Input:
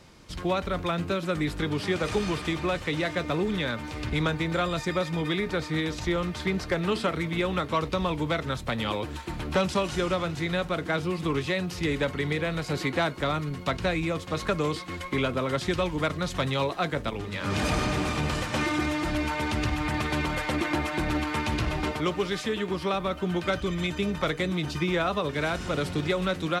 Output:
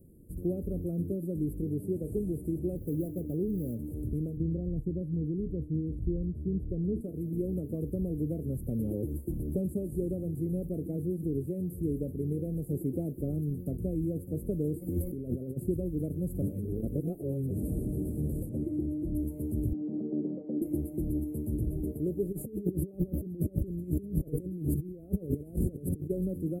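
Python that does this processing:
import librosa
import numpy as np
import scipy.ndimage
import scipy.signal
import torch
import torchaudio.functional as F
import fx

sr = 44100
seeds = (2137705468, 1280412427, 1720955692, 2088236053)

y = fx.median_filter(x, sr, points=15, at=(2.76, 3.77))
y = fx.tilt_eq(y, sr, slope=-3.5, at=(4.37, 7.01))
y = fx.over_compress(y, sr, threshold_db=-37.0, ratio=-1.0, at=(14.81, 15.56), fade=0.02)
y = fx.lowpass(y, sr, hz=2500.0, slope=6, at=(18.49, 19.15))
y = fx.cheby1_bandpass(y, sr, low_hz=200.0, high_hz=1500.0, order=3, at=(19.73, 20.62))
y = fx.over_compress(y, sr, threshold_db=-35.0, ratio=-0.5, at=(22.31, 26.09), fade=0.02)
y = fx.edit(y, sr, fx.reverse_span(start_s=16.42, length_s=1.09), tone=tone)
y = scipy.signal.sosfilt(scipy.signal.cheby2(4, 50, [960.0, 6000.0], 'bandstop', fs=sr, output='sos'), y)
y = fx.high_shelf(y, sr, hz=3300.0, db=7.0)
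y = fx.rider(y, sr, range_db=10, speed_s=0.5)
y = y * librosa.db_to_amplitude(-3.5)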